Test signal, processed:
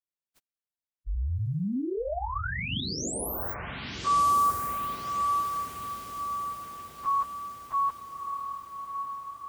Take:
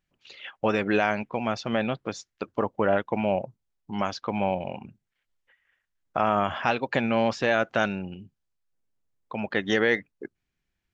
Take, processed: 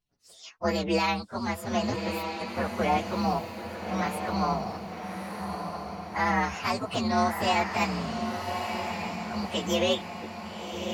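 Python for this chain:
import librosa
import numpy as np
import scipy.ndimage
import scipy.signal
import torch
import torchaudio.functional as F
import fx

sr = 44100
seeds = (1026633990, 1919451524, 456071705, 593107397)

y = fx.partial_stretch(x, sr, pct=126)
y = fx.echo_diffused(y, sr, ms=1227, feedback_pct=51, wet_db=-5.5)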